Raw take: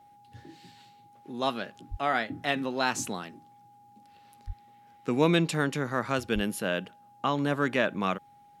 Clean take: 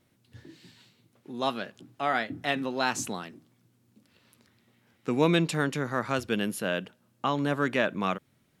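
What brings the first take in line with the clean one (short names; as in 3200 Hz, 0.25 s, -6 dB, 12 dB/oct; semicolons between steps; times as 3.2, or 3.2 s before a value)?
notch 820 Hz, Q 30; de-plosive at 1.9/4.46/6.34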